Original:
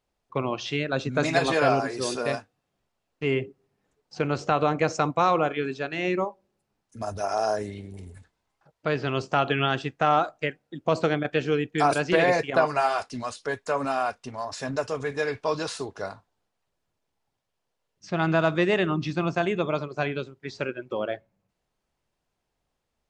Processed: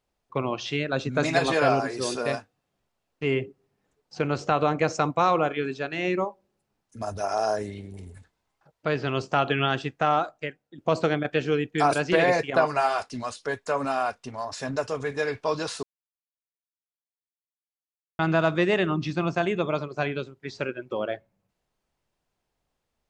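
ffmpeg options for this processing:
ffmpeg -i in.wav -filter_complex "[0:a]asplit=4[link_01][link_02][link_03][link_04];[link_01]atrim=end=10.78,asetpts=PTS-STARTPTS,afade=type=out:start_time=9.91:duration=0.87:silence=0.354813[link_05];[link_02]atrim=start=10.78:end=15.83,asetpts=PTS-STARTPTS,afade=type=in:duration=0.004:curve=hsin:silence=0.354813,afade=type=out:start_time=5.046:duration=0.004:curve=hsin[link_06];[link_03]atrim=start=15.83:end=18.19,asetpts=PTS-STARTPTS,volume=0[link_07];[link_04]atrim=start=18.19,asetpts=PTS-STARTPTS,afade=type=in:duration=0.004:curve=hsin[link_08];[link_05][link_06][link_07][link_08]concat=n=4:v=0:a=1" out.wav

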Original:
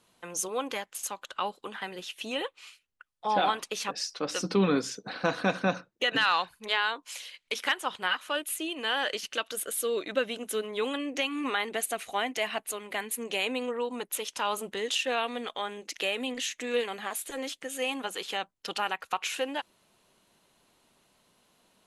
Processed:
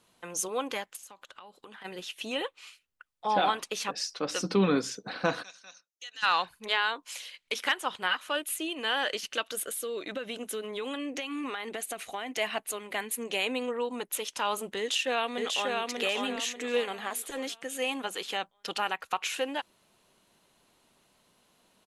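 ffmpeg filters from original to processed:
ffmpeg -i in.wav -filter_complex "[0:a]asplit=3[link_01][link_02][link_03];[link_01]afade=type=out:start_time=0.95:duration=0.02[link_04];[link_02]acompressor=threshold=-44dB:ratio=16:attack=3.2:release=140:knee=1:detection=peak,afade=type=in:start_time=0.95:duration=0.02,afade=type=out:start_time=1.84:duration=0.02[link_05];[link_03]afade=type=in:start_time=1.84:duration=0.02[link_06];[link_04][link_05][link_06]amix=inputs=3:normalize=0,asplit=3[link_07][link_08][link_09];[link_07]afade=type=out:start_time=5.42:duration=0.02[link_10];[link_08]bandpass=frequency=6200:width_type=q:width=3,afade=type=in:start_time=5.42:duration=0.02,afade=type=out:start_time=6.22:duration=0.02[link_11];[link_09]afade=type=in:start_time=6.22:duration=0.02[link_12];[link_10][link_11][link_12]amix=inputs=3:normalize=0,asettb=1/sr,asplit=3[link_13][link_14][link_15];[link_13]atrim=end=9.674[link_16];[link_14]atrim=start=9.67:end=12.33,asetpts=PTS-STARTPTS,afade=type=in:duration=0.004:curve=qsin,afade=type=out:start_time=2.656:duration=0.004:curve=qsin,acompressor=threshold=-31dB:ratio=6:attack=3.2:release=140:knee=1:detection=peak[link_17];[link_15]atrim=start=12.326[link_18];[link_16][link_17]acrossfade=duration=0.004:curve1=hsin:curve2=qsin[link_19];[link_19][link_18]acrossfade=duration=0.004:curve1=qsin:curve2=hsin,asplit=2[link_20][link_21];[link_21]afade=type=in:start_time=14.78:duration=0.01,afade=type=out:start_time=15.77:duration=0.01,aecho=0:1:590|1180|1770|2360|2950:0.749894|0.262463|0.091862|0.0321517|0.0112531[link_22];[link_20][link_22]amix=inputs=2:normalize=0" out.wav

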